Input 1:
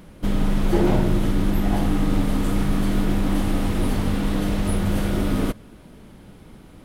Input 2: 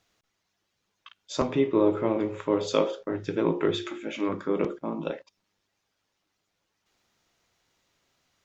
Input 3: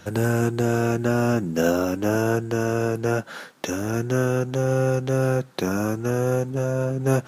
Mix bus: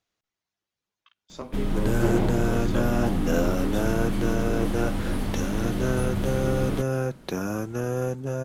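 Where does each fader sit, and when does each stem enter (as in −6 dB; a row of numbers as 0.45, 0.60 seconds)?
−5.5, −11.0, −5.0 decibels; 1.30, 0.00, 1.70 seconds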